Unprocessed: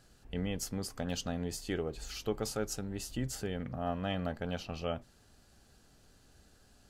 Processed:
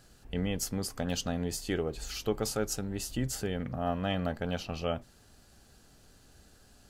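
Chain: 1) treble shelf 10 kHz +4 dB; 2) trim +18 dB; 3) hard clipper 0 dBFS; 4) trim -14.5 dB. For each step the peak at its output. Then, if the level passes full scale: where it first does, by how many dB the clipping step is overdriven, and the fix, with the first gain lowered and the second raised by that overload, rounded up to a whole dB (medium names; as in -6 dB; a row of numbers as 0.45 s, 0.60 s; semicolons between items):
-21.0 dBFS, -3.0 dBFS, -3.0 dBFS, -17.5 dBFS; nothing clips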